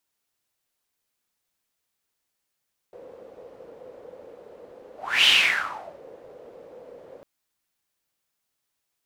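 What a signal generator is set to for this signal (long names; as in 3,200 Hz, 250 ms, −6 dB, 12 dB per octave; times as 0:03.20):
pass-by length 4.30 s, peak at 0:02.33, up 0.33 s, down 0.80 s, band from 500 Hz, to 3,000 Hz, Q 7.1, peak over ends 29 dB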